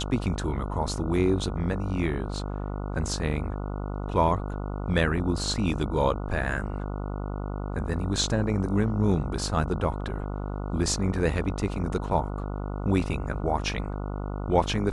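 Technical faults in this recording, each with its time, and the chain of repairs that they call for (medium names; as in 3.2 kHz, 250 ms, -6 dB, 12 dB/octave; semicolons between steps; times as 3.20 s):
buzz 50 Hz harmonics 29 -32 dBFS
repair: de-hum 50 Hz, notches 29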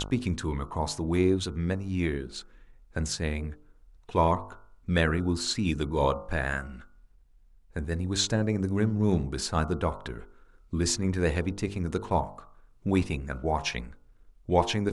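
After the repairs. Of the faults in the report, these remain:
nothing left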